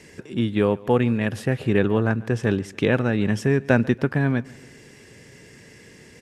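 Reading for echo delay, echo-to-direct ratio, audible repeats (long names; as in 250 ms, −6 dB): 143 ms, −21.5 dB, 2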